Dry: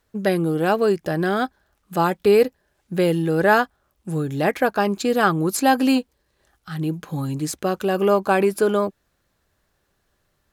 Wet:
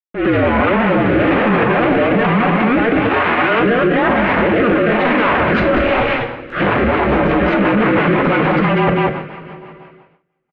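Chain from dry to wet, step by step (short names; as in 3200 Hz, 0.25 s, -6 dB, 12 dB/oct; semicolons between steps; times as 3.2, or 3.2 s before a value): 0.84–1.44 minimum comb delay 9.3 ms; echoes that change speed 0.601 s, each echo +2 st, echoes 3, each echo -6 dB; fuzz box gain 40 dB, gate -42 dBFS; mistuned SSB -240 Hz 490–2800 Hz; transient shaper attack -9 dB, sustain +8 dB; two-slope reverb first 0.42 s, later 3 s, from -19 dB, DRR 4 dB; gate with hold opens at -43 dBFS; echo 0.194 s -7 dB; rotary speaker horn 1.1 Hz, later 6 Hz, at 6.31; 3.09–3.6 low shelf 500 Hz -11 dB; maximiser +17.5 dB; gain -5 dB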